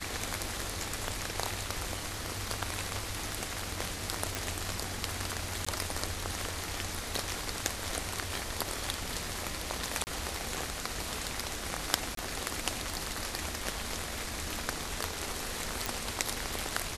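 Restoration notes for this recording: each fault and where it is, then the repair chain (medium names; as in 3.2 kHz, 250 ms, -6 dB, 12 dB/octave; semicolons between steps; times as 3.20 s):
4.35 s: pop
5.65–5.67 s: dropout 15 ms
10.04–10.07 s: dropout 29 ms
12.15–12.17 s: dropout 23 ms
15.86 s: pop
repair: de-click; interpolate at 5.65 s, 15 ms; interpolate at 10.04 s, 29 ms; interpolate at 12.15 s, 23 ms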